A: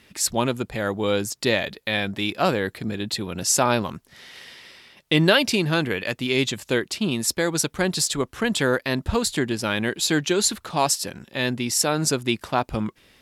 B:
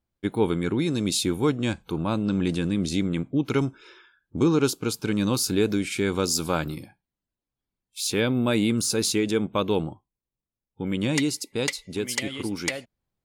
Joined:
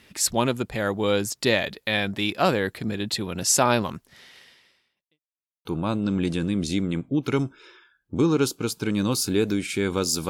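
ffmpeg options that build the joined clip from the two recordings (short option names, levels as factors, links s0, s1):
-filter_complex "[0:a]apad=whole_dur=10.29,atrim=end=10.29,asplit=2[s0][s1];[s0]atrim=end=5.2,asetpts=PTS-STARTPTS,afade=t=out:st=3.95:d=1.25:c=qua[s2];[s1]atrim=start=5.2:end=5.65,asetpts=PTS-STARTPTS,volume=0[s3];[1:a]atrim=start=1.87:end=6.51,asetpts=PTS-STARTPTS,afade=t=in:d=0.004:c=hsin[s4];[s2][s3][s4]concat=n=3:v=0:a=1"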